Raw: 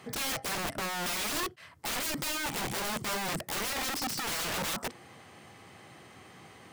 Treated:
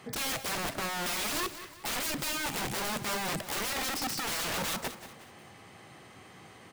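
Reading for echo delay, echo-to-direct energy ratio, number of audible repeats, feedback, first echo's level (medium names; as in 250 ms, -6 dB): 183 ms, -12.0 dB, 3, 41%, -13.0 dB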